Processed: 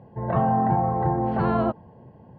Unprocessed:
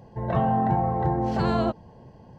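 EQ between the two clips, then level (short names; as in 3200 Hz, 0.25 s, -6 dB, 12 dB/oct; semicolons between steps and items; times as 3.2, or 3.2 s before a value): dynamic EQ 1200 Hz, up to +4 dB, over -41 dBFS, Q 1; HPF 80 Hz; air absorption 500 m; +1.5 dB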